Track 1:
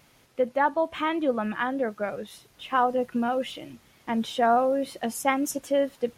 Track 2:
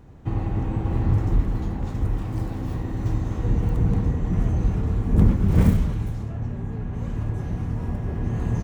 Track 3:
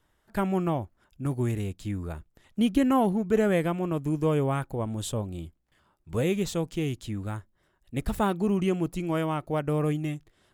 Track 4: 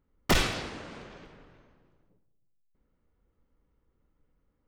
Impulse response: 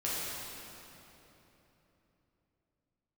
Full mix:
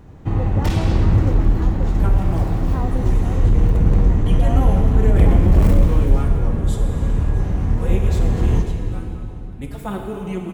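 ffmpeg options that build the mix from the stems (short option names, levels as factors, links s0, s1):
-filter_complex "[0:a]lowpass=1000,volume=0.376[s0];[1:a]asubboost=boost=3.5:cutoff=61,volume=5.96,asoftclip=hard,volume=0.168,volume=1.33,asplit=2[s1][s2];[s2]volume=0.398[s3];[2:a]asplit=2[s4][s5];[s5]adelay=4.6,afreqshift=2[s6];[s4][s6]amix=inputs=2:normalize=1,adelay=1650,volume=0.631,asplit=2[s7][s8];[s8]volume=0.596[s9];[3:a]alimiter=level_in=1.41:limit=0.0631:level=0:latency=1,volume=0.708,adelay=350,volume=1.26[s10];[4:a]atrim=start_sample=2205[s11];[s3][s9]amix=inputs=2:normalize=0[s12];[s12][s11]afir=irnorm=-1:irlink=0[s13];[s0][s1][s7][s10][s13]amix=inputs=5:normalize=0"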